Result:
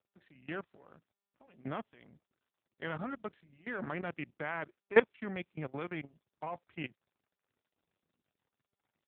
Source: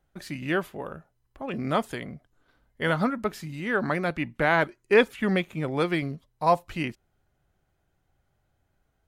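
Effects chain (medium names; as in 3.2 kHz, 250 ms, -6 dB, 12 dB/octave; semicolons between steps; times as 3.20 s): level held to a coarse grid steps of 15 dB; power-law waveshaper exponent 1.4; AMR-NB 7.4 kbps 8 kHz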